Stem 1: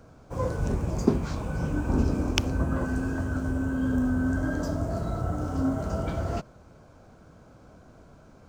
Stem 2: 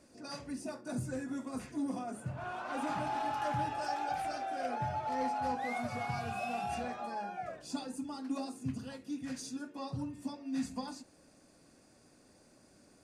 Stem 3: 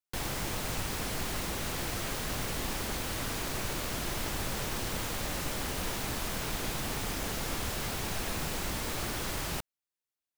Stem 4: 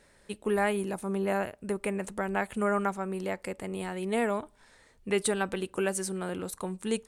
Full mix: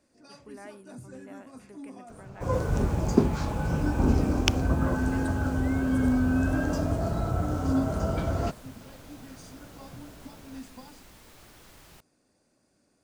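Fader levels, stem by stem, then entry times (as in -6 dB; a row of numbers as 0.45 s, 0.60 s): +1.5 dB, -7.5 dB, -18.0 dB, -19.5 dB; 2.10 s, 0.00 s, 2.40 s, 0.00 s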